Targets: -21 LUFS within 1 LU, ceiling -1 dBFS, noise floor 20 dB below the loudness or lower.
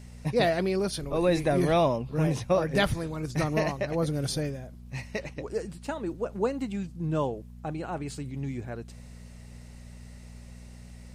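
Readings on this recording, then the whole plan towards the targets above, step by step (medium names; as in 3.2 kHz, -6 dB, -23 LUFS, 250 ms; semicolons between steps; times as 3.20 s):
hum 60 Hz; highest harmonic 240 Hz; hum level -44 dBFS; loudness -29.0 LUFS; peak level -12.0 dBFS; loudness target -21.0 LUFS
-> de-hum 60 Hz, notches 4; trim +8 dB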